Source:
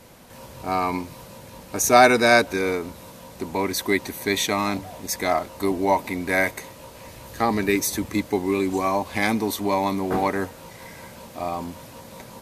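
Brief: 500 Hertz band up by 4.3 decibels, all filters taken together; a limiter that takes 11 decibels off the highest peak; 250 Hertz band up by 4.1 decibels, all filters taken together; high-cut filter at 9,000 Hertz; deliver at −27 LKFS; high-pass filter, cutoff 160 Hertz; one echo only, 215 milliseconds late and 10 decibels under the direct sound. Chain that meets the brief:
high-pass filter 160 Hz
low-pass filter 9,000 Hz
parametric band 250 Hz +4.5 dB
parametric band 500 Hz +4.5 dB
brickwall limiter −10.5 dBFS
single-tap delay 215 ms −10 dB
level −4.5 dB

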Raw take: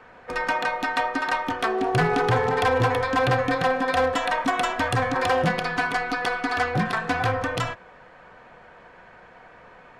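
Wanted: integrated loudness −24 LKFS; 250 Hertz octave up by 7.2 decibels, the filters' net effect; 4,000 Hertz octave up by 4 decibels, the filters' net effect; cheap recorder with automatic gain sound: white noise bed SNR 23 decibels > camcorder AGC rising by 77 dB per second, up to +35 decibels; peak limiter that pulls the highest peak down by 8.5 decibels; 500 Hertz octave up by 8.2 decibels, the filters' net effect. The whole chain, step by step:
parametric band 250 Hz +6.5 dB
parametric band 500 Hz +7.5 dB
parametric band 4,000 Hz +5 dB
brickwall limiter −14.5 dBFS
white noise bed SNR 23 dB
camcorder AGC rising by 77 dB per second, up to +35 dB
level −0.5 dB

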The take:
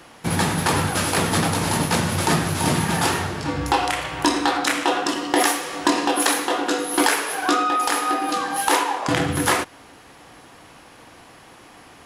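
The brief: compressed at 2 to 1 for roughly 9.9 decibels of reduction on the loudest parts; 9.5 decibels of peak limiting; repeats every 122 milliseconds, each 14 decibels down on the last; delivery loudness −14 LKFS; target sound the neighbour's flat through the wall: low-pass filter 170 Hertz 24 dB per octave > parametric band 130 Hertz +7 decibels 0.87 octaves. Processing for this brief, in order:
downward compressor 2 to 1, threshold −34 dBFS
brickwall limiter −22.5 dBFS
low-pass filter 170 Hz 24 dB per octave
parametric band 130 Hz +7 dB 0.87 octaves
repeating echo 122 ms, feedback 20%, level −14 dB
level +22 dB

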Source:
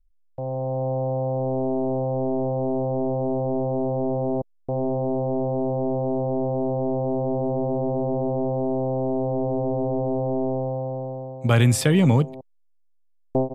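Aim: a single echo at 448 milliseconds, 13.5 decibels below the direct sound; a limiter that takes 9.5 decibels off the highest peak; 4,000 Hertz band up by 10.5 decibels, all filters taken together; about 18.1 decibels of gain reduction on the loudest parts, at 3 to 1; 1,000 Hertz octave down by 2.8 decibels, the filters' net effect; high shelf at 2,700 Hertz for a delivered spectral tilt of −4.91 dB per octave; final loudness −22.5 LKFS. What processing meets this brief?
parametric band 1,000 Hz −5.5 dB
high-shelf EQ 2,700 Hz +8.5 dB
parametric band 4,000 Hz +7 dB
downward compressor 3 to 1, threshold −39 dBFS
brickwall limiter −31 dBFS
single-tap delay 448 ms −13.5 dB
level +15 dB

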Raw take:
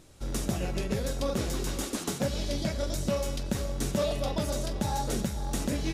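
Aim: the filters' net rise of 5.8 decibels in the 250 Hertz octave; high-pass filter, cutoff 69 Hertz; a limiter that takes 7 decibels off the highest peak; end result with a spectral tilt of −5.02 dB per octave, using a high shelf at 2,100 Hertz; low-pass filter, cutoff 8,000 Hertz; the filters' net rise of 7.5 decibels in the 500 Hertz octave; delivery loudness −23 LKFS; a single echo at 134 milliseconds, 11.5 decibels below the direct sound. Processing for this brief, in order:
high-pass filter 69 Hz
low-pass filter 8,000 Hz
parametric band 250 Hz +5.5 dB
parametric band 500 Hz +7.5 dB
high-shelf EQ 2,100 Hz +3.5 dB
brickwall limiter −18 dBFS
single-tap delay 134 ms −11.5 dB
level +5.5 dB

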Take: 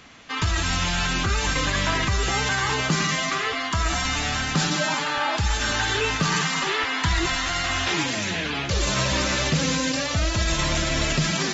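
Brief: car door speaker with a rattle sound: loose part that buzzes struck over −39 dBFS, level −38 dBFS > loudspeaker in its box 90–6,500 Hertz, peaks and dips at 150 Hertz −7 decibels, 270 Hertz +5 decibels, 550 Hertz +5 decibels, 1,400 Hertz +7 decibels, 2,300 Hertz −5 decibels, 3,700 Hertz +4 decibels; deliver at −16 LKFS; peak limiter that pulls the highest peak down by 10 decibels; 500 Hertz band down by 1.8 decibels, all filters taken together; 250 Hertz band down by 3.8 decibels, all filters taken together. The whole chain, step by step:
parametric band 250 Hz −5.5 dB
parametric band 500 Hz −4.5 dB
brickwall limiter −21.5 dBFS
loose part that buzzes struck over −39 dBFS, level −38 dBFS
loudspeaker in its box 90–6,500 Hz, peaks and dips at 150 Hz −7 dB, 270 Hz +5 dB, 550 Hz +5 dB, 1,400 Hz +7 dB, 2,300 Hz −5 dB, 3,700 Hz +4 dB
level +12.5 dB

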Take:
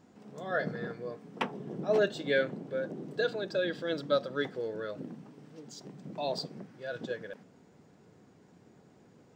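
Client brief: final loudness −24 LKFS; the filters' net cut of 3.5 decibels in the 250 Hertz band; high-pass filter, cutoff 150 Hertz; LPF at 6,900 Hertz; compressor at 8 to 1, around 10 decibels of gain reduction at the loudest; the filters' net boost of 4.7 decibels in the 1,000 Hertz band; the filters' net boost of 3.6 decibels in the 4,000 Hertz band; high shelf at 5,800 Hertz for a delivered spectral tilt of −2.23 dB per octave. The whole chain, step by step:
high-pass filter 150 Hz
low-pass filter 6,900 Hz
parametric band 250 Hz −4.5 dB
parametric band 1,000 Hz +7 dB
parametric band 4,000 Hz +7 dB
high-shelf EQ 5,800 Hz −8.5 dB
downward compressor 8 to 1, threshold −31 dBFS
level +14.5 dB

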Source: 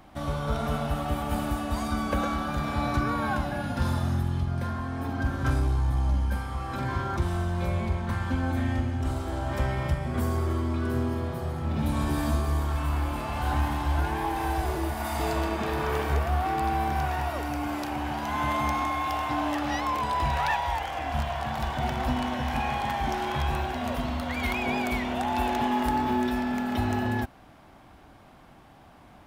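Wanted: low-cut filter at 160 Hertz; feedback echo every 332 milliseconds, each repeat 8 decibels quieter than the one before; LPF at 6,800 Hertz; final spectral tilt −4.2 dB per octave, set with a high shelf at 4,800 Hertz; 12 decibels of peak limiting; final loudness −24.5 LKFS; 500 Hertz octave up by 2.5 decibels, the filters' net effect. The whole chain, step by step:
high-pass filter 160 Hz
low-pass filter 6,800 Hz
parametric band 500 Hz +3.5 dB
high-shelf EQ 4,800 Hz +5.5 dB
brickwall limiter −23.5 dBFS
repeating echo 332 ms, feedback 40%, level −8 dB
level +7 dB

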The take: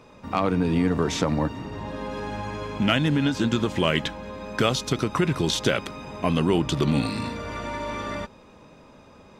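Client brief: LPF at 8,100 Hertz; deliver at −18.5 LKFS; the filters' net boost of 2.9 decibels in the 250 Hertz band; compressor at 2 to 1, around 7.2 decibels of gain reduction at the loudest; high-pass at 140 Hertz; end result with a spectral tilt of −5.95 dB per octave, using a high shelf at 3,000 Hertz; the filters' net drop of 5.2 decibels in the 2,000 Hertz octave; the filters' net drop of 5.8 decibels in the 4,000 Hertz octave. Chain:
high-pass filter 140 Hz
low-pass filter 8,100 Hz
parametric band 250 Hz +4.5 dB
parametric band 2,000 Hz −6.5 dB
high-shelf EQ 3,000 Hz +4.5 dB
parametric band 4,000 Hz −8.5 dB
downward compressor 2 to 1, threshold −29 dBFS
level +12 dB

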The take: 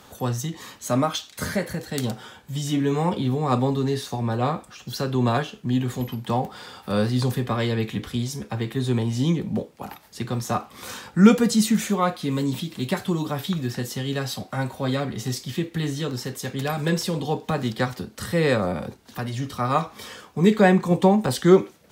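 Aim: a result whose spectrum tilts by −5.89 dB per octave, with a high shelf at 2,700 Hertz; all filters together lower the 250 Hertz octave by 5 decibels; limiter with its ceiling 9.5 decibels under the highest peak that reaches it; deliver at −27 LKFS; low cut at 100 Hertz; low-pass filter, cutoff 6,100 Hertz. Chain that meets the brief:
high-pass filter 100 Hz
low-pass filter 6,100 Hz
parametric band 250 Hz −6.5 dB
high-shelf EQ 2,700 Hz −7 dB
level +2 dB
brickwall limiter −13.5 dBFS

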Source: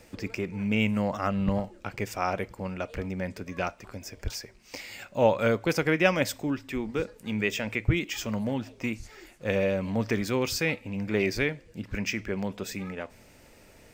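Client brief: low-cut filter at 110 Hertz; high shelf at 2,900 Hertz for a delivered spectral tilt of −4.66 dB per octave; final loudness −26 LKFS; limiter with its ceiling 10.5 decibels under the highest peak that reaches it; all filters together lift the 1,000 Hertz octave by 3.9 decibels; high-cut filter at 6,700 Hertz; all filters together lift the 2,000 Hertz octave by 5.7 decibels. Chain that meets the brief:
high-pass filter 110 Hz
low-pass filter 6,700 Hz
parametric band 1,000 Hz +3.5 dB
parametric band 2,000 Hz +4.5 dB
high-shelf EQ 2,900 Hz +4 dB
level +3 dB
brickwall limiter −11 dBFS

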